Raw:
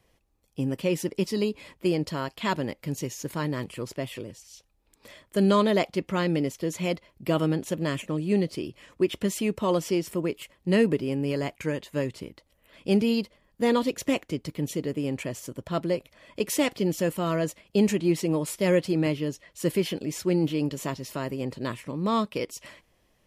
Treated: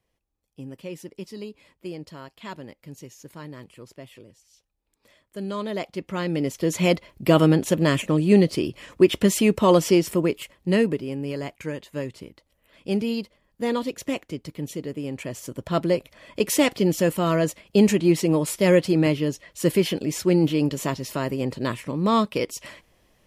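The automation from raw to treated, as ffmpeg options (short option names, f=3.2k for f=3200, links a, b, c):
-af "volume=15dB,afade=t=in:st=5.51:d=0.82:silence=0.334965,afade=t=in:st=6.33:d=0.51:silence=0.375837,afade=t=out:st=9.92:d=1.1:silence=0.316228,afade=t=in:st=15.14:d=0.62:silence=0.446684"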